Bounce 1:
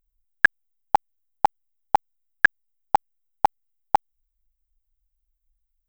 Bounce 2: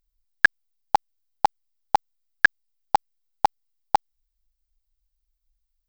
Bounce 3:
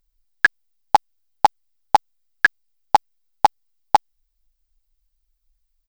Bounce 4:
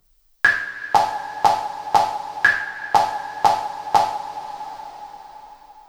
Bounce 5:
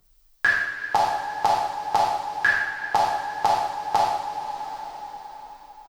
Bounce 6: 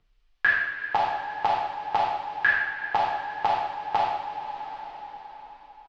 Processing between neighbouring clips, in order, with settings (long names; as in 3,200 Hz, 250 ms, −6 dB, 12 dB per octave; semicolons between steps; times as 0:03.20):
parametric band 4,700 Hz +9.5 dB 0.94 octaves; level −1 dB
brickwall limiter −6 dBFS, peak gain reduction 4.5 dB; comb filter 7 ms, depth 31%; level +4.5 dB
coupled-rooms reverb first 0.52 s, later 3.5 s, from −20 dB, DRR −6.5 dB; multiband upward and downward compressor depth 40%; level −4.5 dB
brickwall limiter −10 dBFS, peak gain reduction 8.5 dB; single-tap delay 118 ms −11 dB
low-pass with resonance 2,800 Hz, resonance Q 1.7; level −4 dB